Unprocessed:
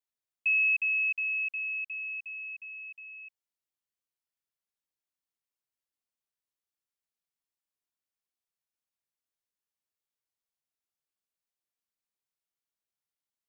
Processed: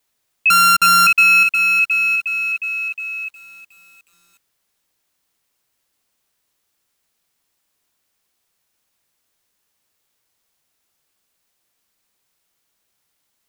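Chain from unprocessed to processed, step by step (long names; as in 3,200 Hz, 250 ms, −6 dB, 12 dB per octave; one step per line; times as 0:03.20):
0:00.50–0:01.07: samples sorted by size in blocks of 32 samples
boost into a limiter +29 dB
feedback echo at a low word length 363 ms, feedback 55%, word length 6 bits, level −10.5 dB
level −7.5 dB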